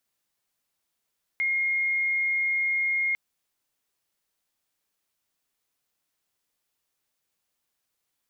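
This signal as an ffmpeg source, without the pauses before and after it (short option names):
-f lavfi -i "sine=f=2140:d=1.75:r=44100,volume=-4.44dB"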